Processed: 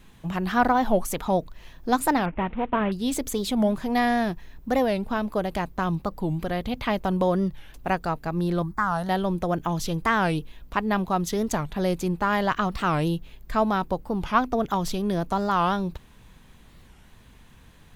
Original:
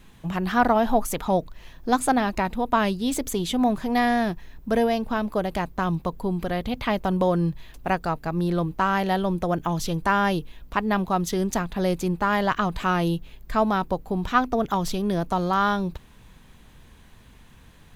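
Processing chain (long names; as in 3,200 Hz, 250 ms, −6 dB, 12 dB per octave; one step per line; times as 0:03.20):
0:02.27–0:02.92: variable-slope delta modulation 16 kbit/s
0:08.62–0:09.09: phaser with its sweep stopped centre 1,100 Hz, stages 4
wow of a warped record 45 rpm, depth 250 cents
level −1 dB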